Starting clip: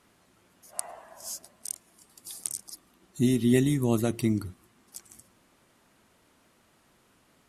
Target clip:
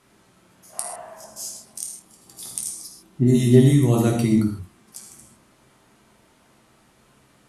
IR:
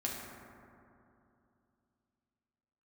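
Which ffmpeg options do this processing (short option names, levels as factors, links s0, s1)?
-filter_complex "[0:a]asettb=1/sr,asplit=3[s0][s1][s2];[s0]atrim=end=1.244[s3];[s1]atrim=start=1.24:end=3.64,asetpts=PTS-STARTPTS,afade=t=in:d=0.004:c=qsin,afade=t=out:st=2.396:d=0.004:c=qsin,acrossover=split=1800[s4][s5];[s5]adelay=120[s6];[s4][s6]amix=inputs=2:normalize=0,atrim=end_sample=105840[s7];[s2]atrim=start=3.636[s8];[s3][s7]acrossfade=d=0.004:c1=hsin:c2=qsin[s9];[s9][s8]acrossfade=d=0.004:c1=qsin:c2=hsin[s10];[1:a]atrim=start_sample=2205,atrim=end_sample=3969,asetrate=24255,aresample=44100[s11];[s10][s11]afir=irnorm=-1:irlink=0,volume=1.19"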